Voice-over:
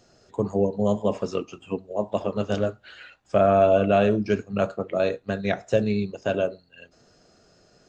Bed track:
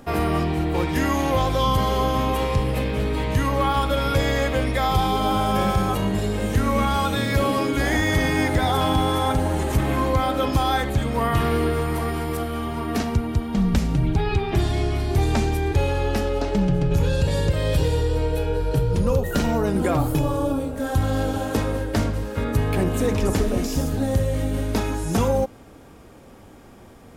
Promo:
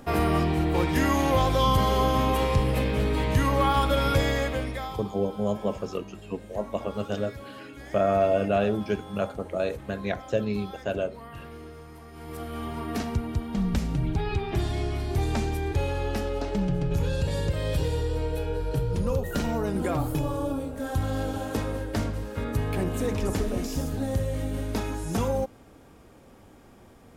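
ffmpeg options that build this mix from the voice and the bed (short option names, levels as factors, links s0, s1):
-filter_complex "[0:a]adelay=4600,volume=0.596[s0];[1:a]volume=5.01,afade=t=out:st=4.08:d=0.96:silence=0.1,afade=t=in:st=12.11:d=0.53:silence=0.16788[s1];[s0][s1]amix=inputs=2:normalize=0"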